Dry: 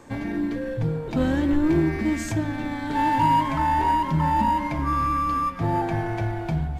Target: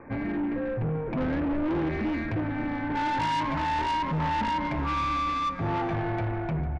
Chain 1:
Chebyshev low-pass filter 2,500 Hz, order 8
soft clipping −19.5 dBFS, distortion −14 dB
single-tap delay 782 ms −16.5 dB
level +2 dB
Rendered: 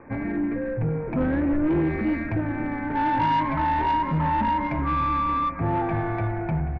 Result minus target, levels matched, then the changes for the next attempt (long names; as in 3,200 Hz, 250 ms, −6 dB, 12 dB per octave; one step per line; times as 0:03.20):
echo 332 ms late; soft clipping: distortion −7 dB
change: soft clipping −27 dBFS, distortion −8 dB
change: single-tap delay 450 ms −16.5 dB